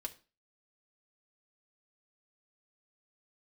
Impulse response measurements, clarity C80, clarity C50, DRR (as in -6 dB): 22.5 dB, 17.0 dB, 0.0 dB